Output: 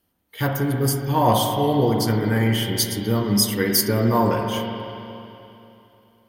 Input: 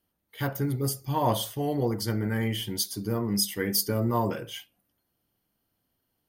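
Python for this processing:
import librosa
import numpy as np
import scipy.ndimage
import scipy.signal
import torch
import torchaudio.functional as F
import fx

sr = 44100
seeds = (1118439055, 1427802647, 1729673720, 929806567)

y = fx.rev_spring(x, sr, rt60_s=3.0, pass_ms=(44, 48), chirp_ms=80, drr_db=2.5)
y = np.clip(y, -10.0 ** (-13.5 / 20.0), 10.0 ** (-13.5 / 20.0))
y = F.gain(torch.from_numpy(y), 6.5).numpy()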